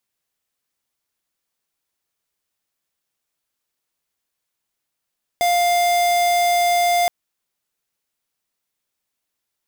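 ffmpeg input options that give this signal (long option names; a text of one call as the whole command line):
ffmpeg -f lavfi -i "aevalsrc='0.141*(2*lt(mod(701*t,1),0.5)-1)':duration=1.67:sample_rate=44100" out.wav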